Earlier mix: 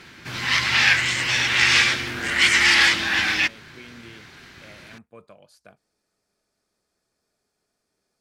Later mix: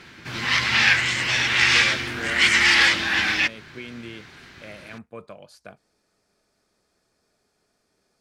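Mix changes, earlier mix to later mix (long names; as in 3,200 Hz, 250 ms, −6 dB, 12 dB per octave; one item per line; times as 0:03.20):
speech +7.0 dB
master: add high-shelf EQ 8,000 Hz −6 dB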